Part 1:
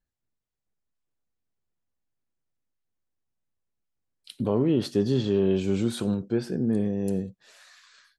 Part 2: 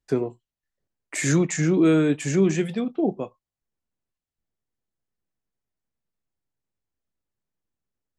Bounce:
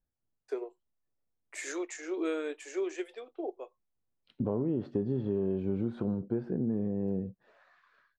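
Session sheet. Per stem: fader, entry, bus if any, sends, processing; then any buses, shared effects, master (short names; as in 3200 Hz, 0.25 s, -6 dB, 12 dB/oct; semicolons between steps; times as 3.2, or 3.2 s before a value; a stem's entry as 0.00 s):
-0.5 dB, 0.00 s, no send, LPF 1100 Hz 12 dB/oct
-7.0 dB, 0.40 s, no send, steep high-pass 350 Hz 48 dB/oct; high shelf 6400 Hz -4.5 dB; upward expander 1.5:1, over -32 dBFS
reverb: off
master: compressor 4:1, threshold -28 dBFS, peak gain reduction 8.5 dB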